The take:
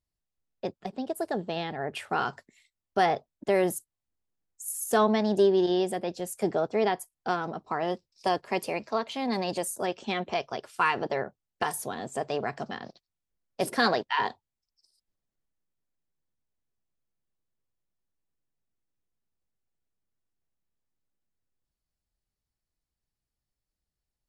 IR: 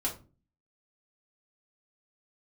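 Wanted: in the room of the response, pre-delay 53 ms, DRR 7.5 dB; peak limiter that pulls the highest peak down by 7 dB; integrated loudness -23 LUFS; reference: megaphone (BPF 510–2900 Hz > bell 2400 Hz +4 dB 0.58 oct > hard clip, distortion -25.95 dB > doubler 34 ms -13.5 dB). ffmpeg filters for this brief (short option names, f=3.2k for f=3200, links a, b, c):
-filter_complex "[0:a]alimiter=limit=-18.5dB:level=0:latency=1,asplit=2[a][b];[1:a]atrim=start_sample=2205,adelay=53[c];[b][c]afir=irnorm=-1:irlink=0,volume=-12dB[d];[a][d]amix=inputs=2:normalize=0,highpass=510,lowpass=2.9k,equalizer=f=2.4k:t=o:w=0.58:g=4,asoftclip=type=hard:threshold=-21.5dB,asplit=2[e][f];[f]adelay=34,volume=-13.5dB[g];[e][g]amix=inputs=2:normalize=0,volume=10.5dB"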